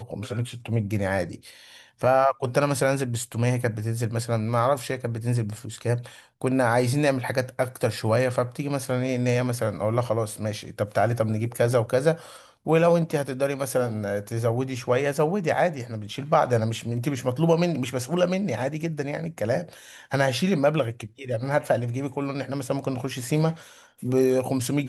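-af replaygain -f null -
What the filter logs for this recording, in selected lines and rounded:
track_gain = +4.8 dB
track_peak = 0.306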